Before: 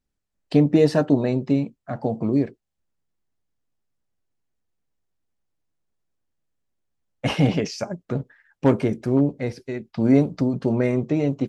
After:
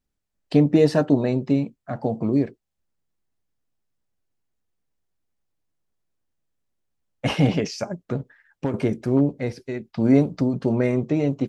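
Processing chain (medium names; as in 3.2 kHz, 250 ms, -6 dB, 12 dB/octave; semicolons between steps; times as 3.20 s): 8.14–8.74 s: compression 6:1, threshold -22 dBFS, peak gain reduction 10.5 dB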